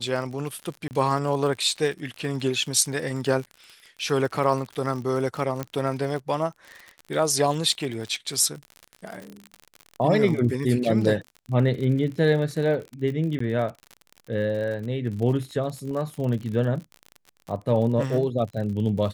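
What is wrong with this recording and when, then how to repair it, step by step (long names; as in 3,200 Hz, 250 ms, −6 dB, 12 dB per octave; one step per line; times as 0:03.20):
surface crackle 50 per second −31 dBFS
0:00.88–0:00.91: drop-out 29 ms
0:05.63: click −15 dBFS
0:13.39–0:13.40: drop-out 14 ms
0:15.91: drop-out 2.7 ms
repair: click removal
repair the gap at 0:00.88, 29 ms
repair the gap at 0:13.39, 14 ms
repair the gap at 0:15.91, 2.7 ms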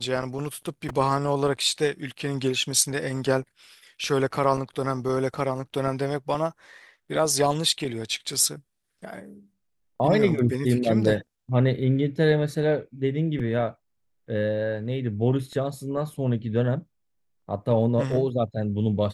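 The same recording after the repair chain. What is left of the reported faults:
none of them is left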